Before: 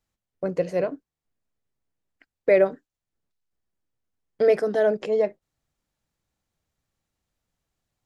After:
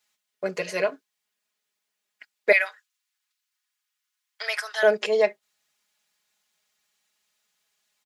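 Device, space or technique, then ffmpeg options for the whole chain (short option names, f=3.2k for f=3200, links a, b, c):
filter by subtraction: -filter_complex "[0:a]asplit=2[a][b];[b]lowpass=2.8k,volume=-1[c];[a][c]amix=inputs=2:normalize=0,asettb=1/sr,asplit=3[d][e][f];[d]atrim=end=2.524[g];[e]atrim=start=2.52:end=4.83,asetpts=PTS-STARTPTS,afade=t=in:d=0.004:c=qsin,afade=t=out:st=2.306:d=0.004:c=qsin,highpass=f=980:w=0.5412,highpass=f=980:w=1.3066[h];[f]atrim=start=4.826[i];[g][h]acrossfade=d=0.004:c1=hsin:c2=qsin[j];[j][i]acrossfade=d=0.004:c1=qsin:c2=hsin,aecho=1:1:4.8:0.95,volume=8dB"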